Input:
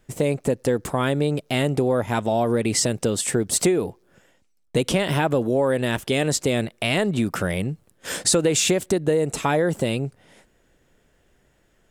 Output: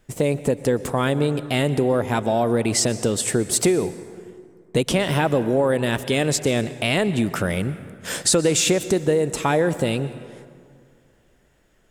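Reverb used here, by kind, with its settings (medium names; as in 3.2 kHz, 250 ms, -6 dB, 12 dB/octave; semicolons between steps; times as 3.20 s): plate-style reverb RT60 2.2 s, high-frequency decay 0.5×, pre-delay 110 ms, DRR 14 dB; trim +1 dB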